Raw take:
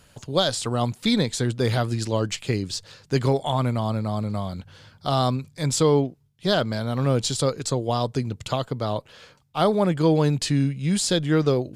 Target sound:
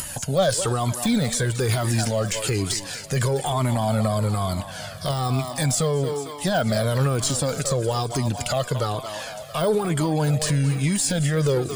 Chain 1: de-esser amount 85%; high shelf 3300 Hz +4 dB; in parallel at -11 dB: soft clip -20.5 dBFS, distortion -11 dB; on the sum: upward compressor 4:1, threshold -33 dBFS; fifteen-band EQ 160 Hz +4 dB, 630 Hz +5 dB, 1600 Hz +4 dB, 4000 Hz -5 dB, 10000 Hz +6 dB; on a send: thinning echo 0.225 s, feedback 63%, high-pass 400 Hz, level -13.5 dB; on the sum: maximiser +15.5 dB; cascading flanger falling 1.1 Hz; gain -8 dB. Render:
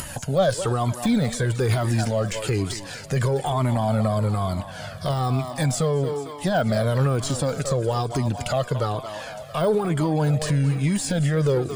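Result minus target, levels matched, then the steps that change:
8000 Hz band -6.5 dB
change: high shelf 3300 Hz +13.5 dB

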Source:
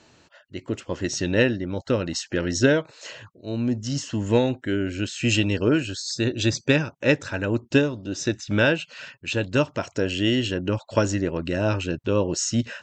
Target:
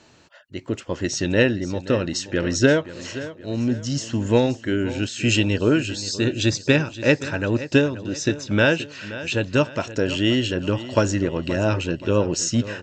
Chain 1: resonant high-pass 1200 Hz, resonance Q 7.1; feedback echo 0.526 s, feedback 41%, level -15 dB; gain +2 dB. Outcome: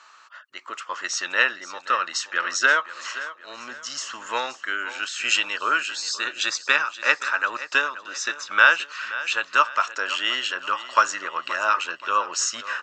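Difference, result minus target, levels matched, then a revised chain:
1000 Hz band +10.5 dB
feedback echo 0.526 s, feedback 41%, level -15 dB; gain +2 dB

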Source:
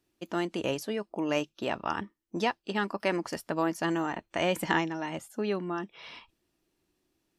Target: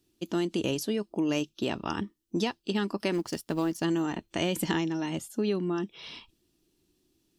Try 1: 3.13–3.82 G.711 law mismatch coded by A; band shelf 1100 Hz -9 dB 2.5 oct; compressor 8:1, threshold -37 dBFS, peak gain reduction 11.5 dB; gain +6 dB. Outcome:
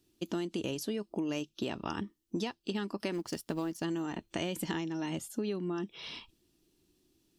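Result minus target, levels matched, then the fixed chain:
compressor: peak gain reduction +7 dB
3.13–3.82 G.711 law mismatch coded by A; band shelf 1100 Hz -9 dB 2.5 oct; compressor 8:1, threshold -29 dBFS, peak gain reduction 4.5 dB; gain +6 dB

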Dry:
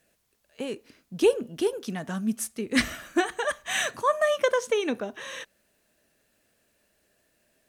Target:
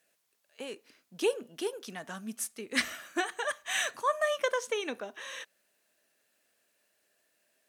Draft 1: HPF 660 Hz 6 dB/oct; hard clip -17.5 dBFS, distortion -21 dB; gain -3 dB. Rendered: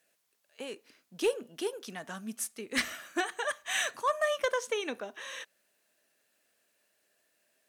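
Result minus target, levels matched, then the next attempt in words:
hard clip: distortion +21 dB
HPF 660 Hz 6 dB/oct; hard clip -11 dBFS, distortion -42 dB; gain -3 dB

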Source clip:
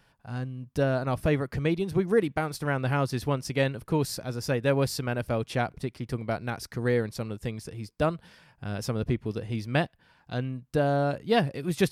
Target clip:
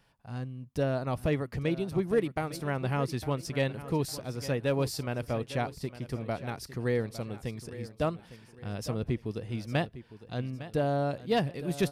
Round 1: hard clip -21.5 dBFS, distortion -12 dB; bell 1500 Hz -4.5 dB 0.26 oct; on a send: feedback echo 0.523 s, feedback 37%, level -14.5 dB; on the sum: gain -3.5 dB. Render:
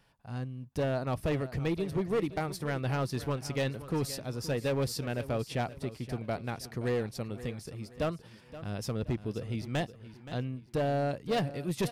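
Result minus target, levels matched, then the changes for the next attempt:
hard clip: distortion +15 dB; echo 0.333 s early
change: hard clip -15 dBFS, distortion -27 dB; change: feedback echo 0.856 s, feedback 37%, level -14.5 dB

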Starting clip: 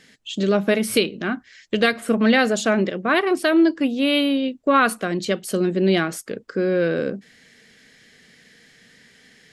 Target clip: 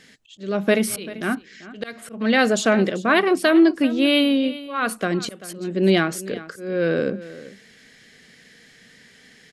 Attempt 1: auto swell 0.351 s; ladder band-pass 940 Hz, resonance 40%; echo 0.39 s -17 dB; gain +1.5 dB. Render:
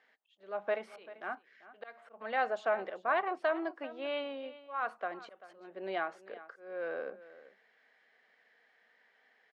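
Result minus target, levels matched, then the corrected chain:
1000 Hz band +7.5 dB
auto swell 0.351 s; echo 0.39 s -17 dB; gain +1.5 dB

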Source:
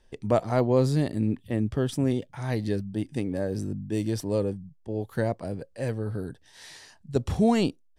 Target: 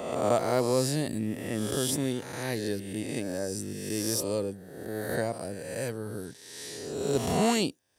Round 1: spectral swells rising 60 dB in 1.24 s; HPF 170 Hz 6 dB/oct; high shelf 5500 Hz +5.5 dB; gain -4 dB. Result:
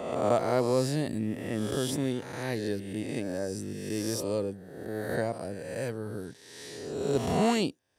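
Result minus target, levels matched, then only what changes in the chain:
8000 Hz band -6.0 dB
change: high shelf 5500 Hz +15 dB

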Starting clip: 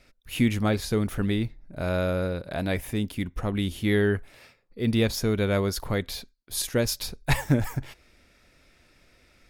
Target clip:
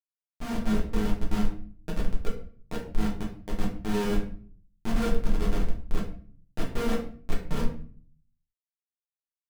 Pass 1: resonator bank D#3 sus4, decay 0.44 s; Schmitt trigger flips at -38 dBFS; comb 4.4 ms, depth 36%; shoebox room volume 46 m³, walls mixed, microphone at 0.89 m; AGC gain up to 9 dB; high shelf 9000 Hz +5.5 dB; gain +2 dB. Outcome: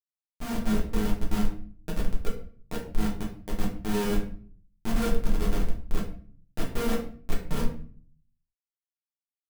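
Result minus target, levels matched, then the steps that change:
8000 Hz band +3.5 dB
change: high shelf 9000 Hz -4 dB

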